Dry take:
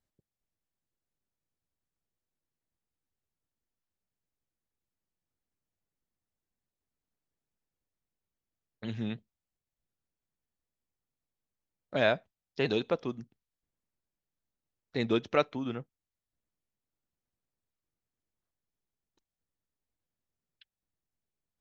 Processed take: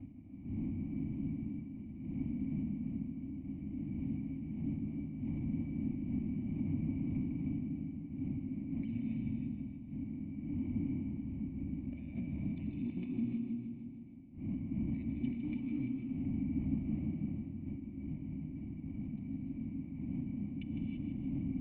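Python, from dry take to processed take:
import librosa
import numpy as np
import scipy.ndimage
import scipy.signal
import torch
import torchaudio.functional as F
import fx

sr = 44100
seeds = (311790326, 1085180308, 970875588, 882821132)

y = fx.dmg_wind(x, sr, seeds[0], corner_hz=220.0, level_db=-48.0)
y = fx.highpass(y, sr, hz=87.0, slope=6)
y = fx.hum_notches(y, sr, base_hz=60, count=7)
y = fx.over_compress(y, sr, threshold_db=-47.0, ratio=-1.0)
y = fx.leveller(y, sr, passes=3)
y = 10.0 ** (-32.0 / 20.0) * np.tanh(y / 10.0 ** (-32.0 / 20.0))
y = fx.formant_cascade(y, sr, vowel='i')
y = fx.fixed_phaser(y, sr, hz=2200.0, stages=8)
y = fx.echo_feedback(y, sr, ms=156, feedback_pct=60, wet_db=-7.5)
y = fx.rev_gated(y, sr, seeds[1], gate_ms=360, shape='rising', drr_db=2.5)
y = y * librosa.db_to_amplitude(9.0)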